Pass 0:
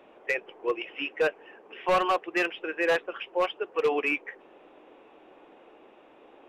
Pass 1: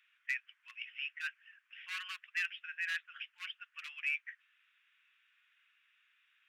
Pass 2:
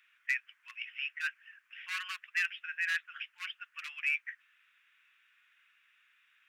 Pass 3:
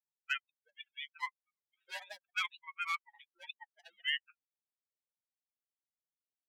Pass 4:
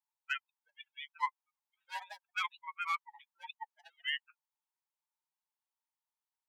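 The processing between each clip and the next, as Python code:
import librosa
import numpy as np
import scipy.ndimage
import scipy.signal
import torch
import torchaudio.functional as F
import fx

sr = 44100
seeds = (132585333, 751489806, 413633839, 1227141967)

y1 = scipy.signal.sosfilt(scipy.signal.butter(8, 1500.0, 'highpass', fs=sr, output='sos'), x)
y1 = y1 * 10.0 ** (-6.5 / 20.0)
y2 = fx.peak_eq(y1, sr, hz=3200.0, db=-4.0, octaves=0.67)
y2 = y2 * 10.0 ** (5.5 / 20.0)
y3 = fx.bin_expand(y2, sr, power=3.0)
y3 = y3 * np.sin(2.0 * np.pi * 520.0 * np.arange(len(y3)) / sr)
y3 = fx.vibrato(y3, sr, rate_hz=0.49, depth_cents=60.0)
y3 = y3 * 10.0 ** (3.5 / 20.0)
y4 = fx.ladder_highpass(y3, sr, hz=840.0, resonance_pct=75)
y4 = y4 * 10.0 ** (9.0 / 20.0)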